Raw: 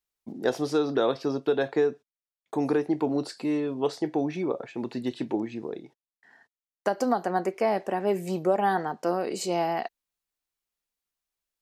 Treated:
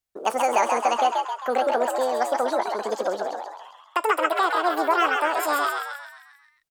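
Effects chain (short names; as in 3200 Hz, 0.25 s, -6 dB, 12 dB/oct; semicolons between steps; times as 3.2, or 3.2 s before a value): speed mistake 45 rpm record played at 78 rpm; frequency-shifting echo 0.133 s, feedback 51%, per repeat +92 Hz, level -4 dB; gain +2.5 dB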